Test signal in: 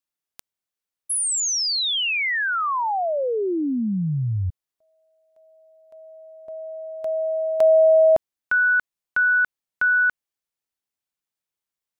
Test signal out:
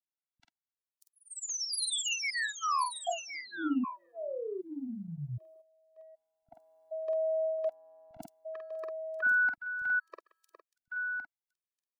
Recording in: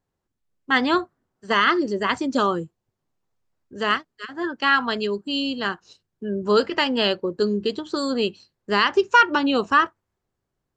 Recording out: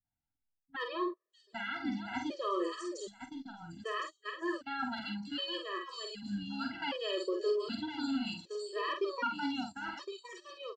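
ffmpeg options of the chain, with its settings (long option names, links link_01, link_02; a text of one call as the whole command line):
ffmpeg -i in.wav -filter_complex "[0:a]acrossover=split=480|2100[link_01][link_02][link_03];[link_01]acompressor=threshold=-26dB:ratio=6:attack=19:release=47:knee=2.83:detection=peak[link_04];[link_04][link_02][link_03]amix=inputs=3:normalize=0,acrossover=split=200|5300[link_05][link_06][link_07];[link_06]adelay=40[link_08];[link_07]adelay=630[link_09];[link_05][link_08][link_09]amix=inputs=3:normalize=0,areverse,acompressor=threshold=-26dB:ratio=20:attack=0.43:release=265:knee=6:detection=rms,areverse,asplit=2[link_10][link_11];[link_11]adelay=48,volume=-5dB[link_12];[link_10][link_12]amix=inputs=2:normalize=0,asplit=2[link_13][link_14];[link_14]aecho=0:1:1061:0.355[link_15];[link_13][link_15]amix=inputs=2:normalize=0,agate=range=-12dB:threshold=-46dB:ratio=16:release=59:detection=peak,adynamicequalizer=threshold=0.01:dfrequency=1700:dqfactor=2:tfrequency=1700:tqfactor=2:attack=5:release=100:ratio=0.375:range=2.5:mode=cutabove:tftype=bell,afftfilt=real='re*gt(sin(2*PI*0.65*pts/sr)*(1-2*mod(floor(b*sr/1024/330),2)),0)':imag='im*gt(sin(2*PI*0.65*pts/sr)*(1-2*mod(floor(b*sr/1024/330),2)),0)':win_size=1024:overlap=0.75" out.wav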